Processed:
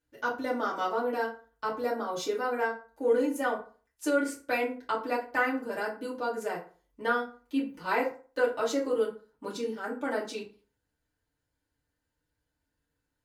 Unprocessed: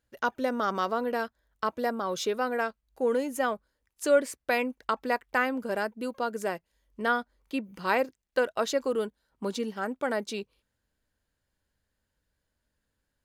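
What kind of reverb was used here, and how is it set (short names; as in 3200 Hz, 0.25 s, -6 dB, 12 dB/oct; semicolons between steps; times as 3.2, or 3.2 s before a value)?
FDN reverb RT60 0.39 s, low-frequency decay 1×, high-frequency decay 0.65×, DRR -7 dB; gain -9.5 dB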